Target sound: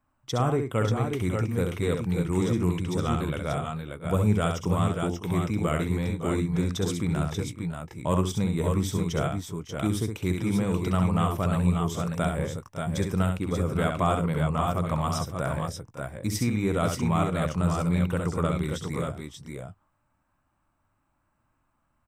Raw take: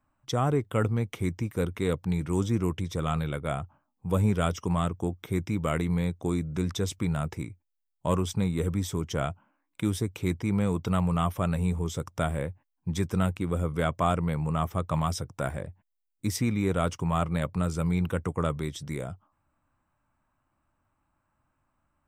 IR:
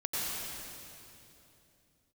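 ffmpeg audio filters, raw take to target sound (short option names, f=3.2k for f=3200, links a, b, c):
-af "aecho=1:1:66|104|555|585|602:0.531|0.106|0.178|0.562|0.158"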